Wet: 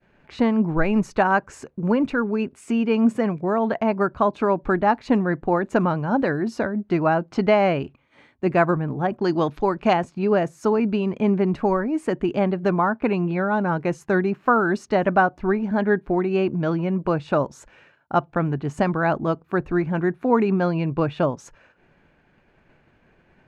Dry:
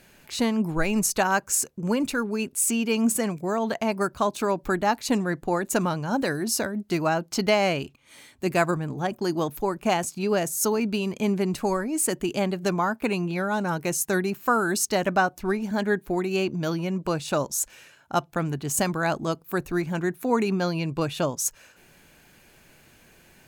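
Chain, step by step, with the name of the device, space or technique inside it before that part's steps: hearing-loss simulation (low-pass 1.8 kHz 12 dB/octave; expander -51 dBFS); 9.24–9.93 s: peaking EQ 4.7 kHz +11 dB 1.8 oct; trim +4.5 dB

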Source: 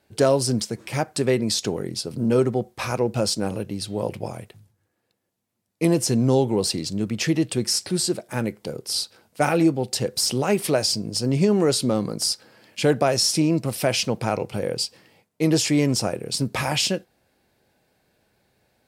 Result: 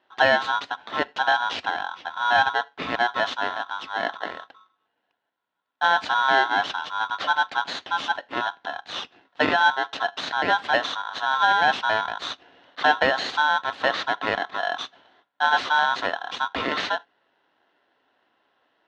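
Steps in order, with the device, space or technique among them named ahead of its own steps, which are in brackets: 1.64–2.28 s: low-pass 2.4 kHz -> 4.7 kHz 24 dB/octave; bass shelf 75 Hz -10.5 dB; ring modulator pedal into a guitar cabinet (polarity switched at an audio rate 1.2 kHz; cabinet simulation 110–3500 Hz, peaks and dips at 140 Hz -4 dB, 270 Hz +6 dB, 740 Hz +3 dB, 2.2 kHz -3 dB)

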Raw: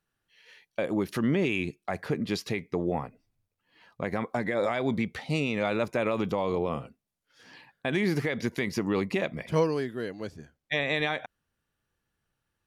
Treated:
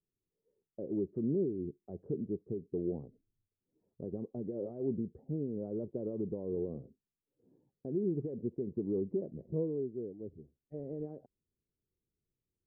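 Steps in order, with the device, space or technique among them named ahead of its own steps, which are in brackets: under water (low-pass 450 Hz 24 dB/octave; peaking EQ 390 Hz +6.5 dB 0.44 oct); trim -8 dB

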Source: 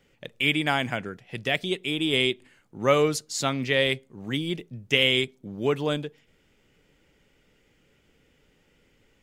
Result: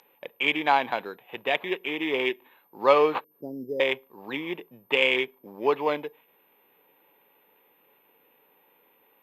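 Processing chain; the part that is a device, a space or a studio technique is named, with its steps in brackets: 3.24–3.80 s: inverse Chebyshev low-pass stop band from 1.1 kHz, stop band 50 dB; toy sound module (decimation joined by straight lines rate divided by 8×; class-D stage that switches slowly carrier 13 kHz; cabinet simulation 610–4900 Hz, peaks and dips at 640 Hz -5 dB, 930 Hz +6 dB, 1.4 kHz -9 dB, 2 kHz -8 dB, 3.1 kHz -6 dB, 4.4 kHz -4 dB); trim +8.5 dB

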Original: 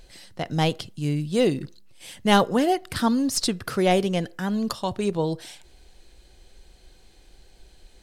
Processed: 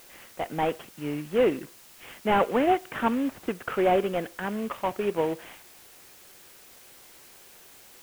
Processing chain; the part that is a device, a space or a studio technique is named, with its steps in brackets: army field radio (band-pass 330–3300 Hz; CVSD coder 16 kbps; white noise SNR 23 dB); trim +1.5 dB

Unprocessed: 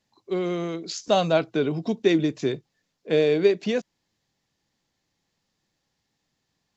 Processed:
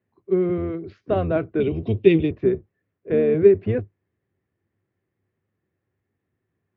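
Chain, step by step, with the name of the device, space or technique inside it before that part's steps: sub-octave bass pedal (octave divider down 1 oct, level 0 dB; cabinet simulation 80–2100 Hz, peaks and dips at 100 Hz +9 dB, 380 Hz +10 dB, 870 Hz -8 dB); 1.60–2.31 s: resonant high shelf 2.1 kHz +10.5 dB, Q 3; trim -2 dB

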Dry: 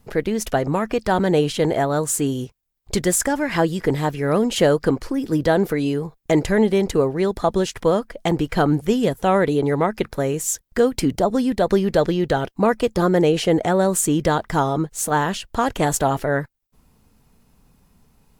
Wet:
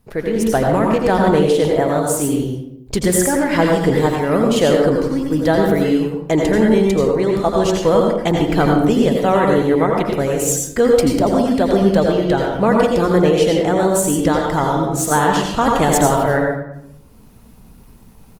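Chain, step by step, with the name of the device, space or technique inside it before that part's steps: speakerphone in a meeting room (reverberation RT60 0.70 s, pre-delay 79 ms, DRR 0.5 dB; speakerphone echo 200 ms, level -30 dB; level rider; trim -1.5 dB; Opus 24 kbps 48 kHz)

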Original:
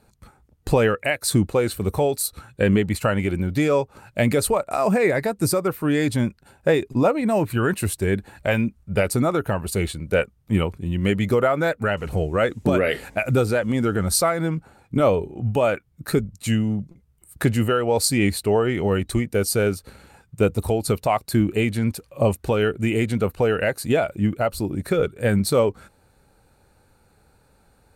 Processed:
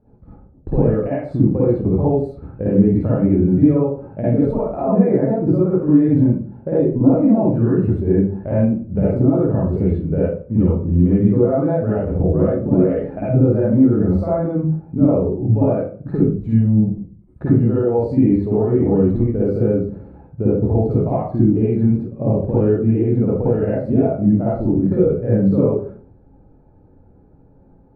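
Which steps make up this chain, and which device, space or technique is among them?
television next door (compression, threshold -20 dBFS, peak gain reduction 7.5 dB; low-pass 490 Hz 12 dB/octave; reverberation RT60 0.45 s, pre-delay 49 ms, DRR -8.5 dB); trim +1 dB

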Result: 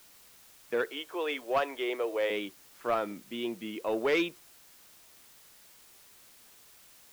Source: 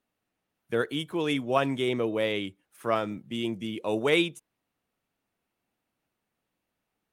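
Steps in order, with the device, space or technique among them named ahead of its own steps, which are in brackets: 0.88–2.30 s: high-pass 380 Hz 24 dB/octave; tape answering machine (band-pass 310–2800 Hz; saturation -19.5 dBFS, distortion -16 dB; wow and flutter; white noise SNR 22 dB)

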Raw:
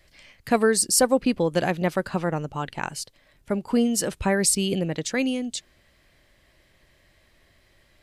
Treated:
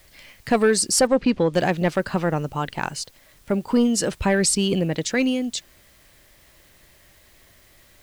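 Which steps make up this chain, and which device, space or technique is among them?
compact cassette (saturation -13 dBFS, distortion -17 dB; low-pass 8.5 kHz 12 dB/octave; wow and flutter 25 cents; white noise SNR 34 dB); 1.07–1.54 s: low-pass 5.5 kHz 12 dB/octave; trim +4 dB

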